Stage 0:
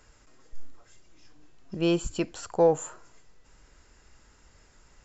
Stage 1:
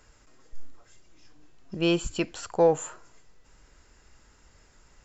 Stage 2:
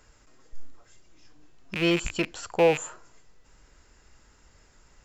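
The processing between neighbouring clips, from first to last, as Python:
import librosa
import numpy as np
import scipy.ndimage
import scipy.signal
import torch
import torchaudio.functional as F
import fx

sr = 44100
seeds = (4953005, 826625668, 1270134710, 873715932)

y1 = fx.dynamic_eq(x, sr, hz=2600.0, q=0.74, threshold_db=-47.0, ratio=4.0, max_db=5)
y2 = fx.rattle_buzz(y1, sr, strikes_db=-44.0, level_db=-19.0)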